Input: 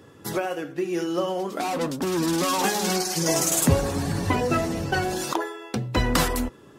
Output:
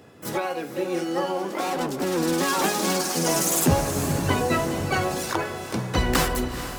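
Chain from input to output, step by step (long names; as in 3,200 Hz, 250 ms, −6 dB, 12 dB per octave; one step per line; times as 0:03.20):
pitch-shifted copies added +7 semitones −4 dB
feedback delay with all-pass diffusion 454 ms, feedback 48%, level −10 dB
level −1.5 dB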